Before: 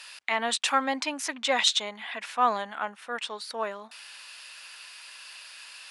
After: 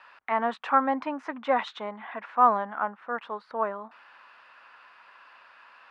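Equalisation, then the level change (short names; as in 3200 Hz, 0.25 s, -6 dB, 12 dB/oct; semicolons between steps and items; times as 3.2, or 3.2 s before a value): synth low-pass 1200 Hz, resonance Q 1.6; low shelf 180 Hz +8.5 dB; 0.0 dB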